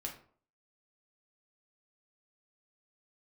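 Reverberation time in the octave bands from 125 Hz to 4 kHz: 0.50, 0.50, 0.55, 0.50, 0.35, 0.30 seconds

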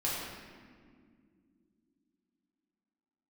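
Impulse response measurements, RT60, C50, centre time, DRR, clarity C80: non-exponential decay, −1.0 dB, 104 ms, −7.5 dB, 1.0 dB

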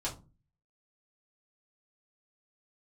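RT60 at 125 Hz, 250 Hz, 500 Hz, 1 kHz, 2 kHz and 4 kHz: 0.65, 0.50, 0.35, 0.30, 0.20, 0.20 seconds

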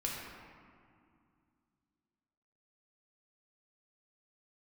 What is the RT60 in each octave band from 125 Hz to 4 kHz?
3.0, 3.1, 2.3, 2.3, 1.8, 1.2 seconds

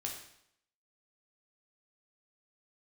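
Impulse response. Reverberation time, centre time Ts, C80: 0.70 s, 32 ms, 8.0 dB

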